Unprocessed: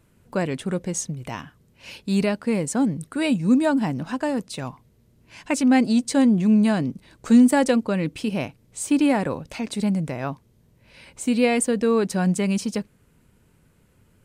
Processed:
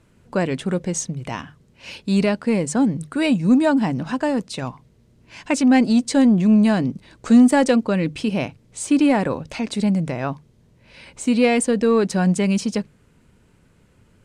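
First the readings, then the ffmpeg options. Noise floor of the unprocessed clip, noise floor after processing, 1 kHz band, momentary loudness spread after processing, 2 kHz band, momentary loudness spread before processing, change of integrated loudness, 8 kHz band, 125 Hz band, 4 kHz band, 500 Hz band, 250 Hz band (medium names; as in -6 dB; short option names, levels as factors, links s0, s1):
-60 dBFS, -57 dBFS, +3.0 dB, 15 LU, +3.0 dB, 15 LU, +3.0 dB, +1.0 dB, +3.0 dB, +3.0 dB, +3.0 dB, +3.0 dB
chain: -filter_complex "[0:a]lowpass=8200,bandreject=f=50:t=h:w=6,bandreject=f=100:t=h:w=6,bandreject=f=150:t=h:w=6,asplit=2[s0][s1];[s1]asoftclip=type=tanh:threshold=0.15,volume=0.562[s2];[s0][s2]amix=inputs=2:normalize=0"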